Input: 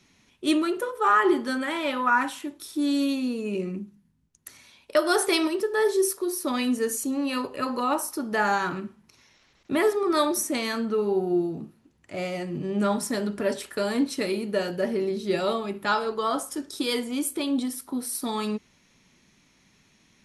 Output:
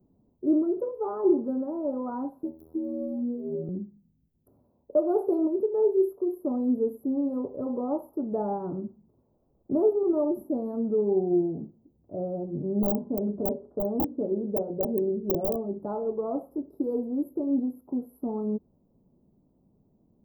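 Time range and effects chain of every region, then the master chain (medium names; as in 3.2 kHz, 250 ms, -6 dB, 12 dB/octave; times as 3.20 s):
2.43–3.69 s: robot voice 80.3 Hz + three bands compressed up and down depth 100%
12.44–15.80 s: low-pass 1.3 kHz 24 dB/octave + hum notches 60/120/180/240/300/360/420/480/540 Hz + integer overflow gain 18 dB
whole clip: inverse Chebyshev band-stop 1.9–9.8 kHz, stop band 60 dB; treble shelf 2.4 kHz +11.5 dB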